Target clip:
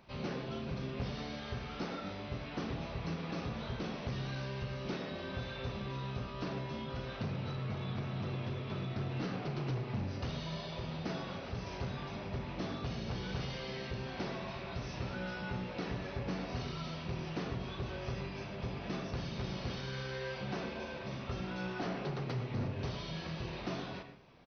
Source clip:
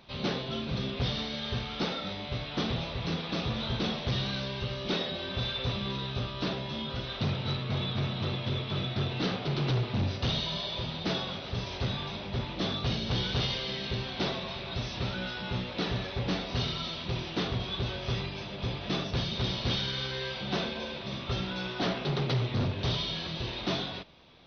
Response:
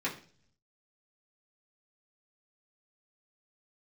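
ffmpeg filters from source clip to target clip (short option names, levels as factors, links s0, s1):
-filter_complex "[0:a]acompressor=threshold=0.0282:ratio=6,equalizer=f=3600:t=o:w=0.55:g=-12,asplit=2[s0][s1];[s1]adelay=38,volume=0.251[s2];[s0][s2]amix=inputs=2:normalize=0,asplit=2[s3][s4];[1:a]atrim=start_sample=2205,adelay=99[s5];[s4][s5]afir=irnorm=-1:irlink=0,volume=0.168[s6];[s3][s6]amix=inputs=2:normalize=0,volume=0.668"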